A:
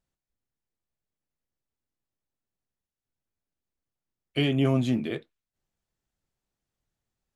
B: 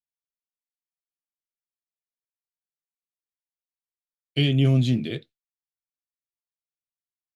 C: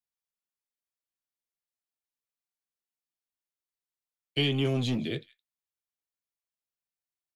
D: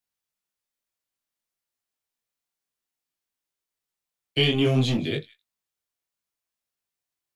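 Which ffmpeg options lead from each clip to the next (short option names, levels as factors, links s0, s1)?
-af "agate=range=0.0224:threshold=0.00631:ratio=3:detection=peak,equalizer=f=125:t=o:w=1:g=8,equalizer=f=1000:t=o:w=1:g=-11,equalizer=f=4000:t=o:w=1:g=9"
-filter_complex "[0:a]acrossover=split=280|1200[s0][s1][s2];[s0]asoftclip=type=tanh:threshold=0.0355[s3];[s2]aecho=1:1:167:0.0794[s4];[s3][s1][s4]amix=inputs=3:normalize=0,volume=0.841"
-af "flanger=delay=19.5:depth=6.6:speed=0.57,volume=2.82"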